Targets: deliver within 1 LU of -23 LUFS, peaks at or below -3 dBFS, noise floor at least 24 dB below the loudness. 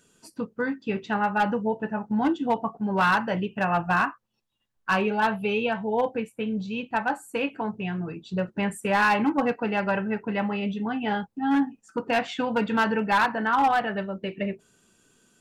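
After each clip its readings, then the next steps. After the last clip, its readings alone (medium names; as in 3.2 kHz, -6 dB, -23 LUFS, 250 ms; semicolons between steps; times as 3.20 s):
clipped samples 0.7%; clipping level -16.0 dBFS; loudness -26.0 LUFS; peak level -16.0 dBFS; loudness target -23.0 LUFS
-> clip repair -16 dBFS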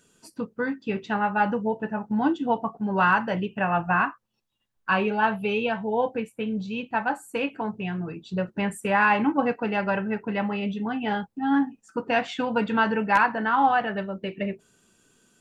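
clipped samples 0.0%; loudness -25.5 LUFS; peak level -7.0 dBFS; loudness target -23.0 LUFS
-> trim +2.5 dB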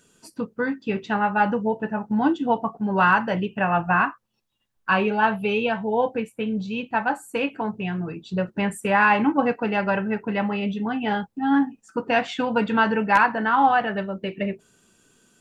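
loudness -23.0 LUFS; peak level -4.5 dBFS; noise floor -69 dBFS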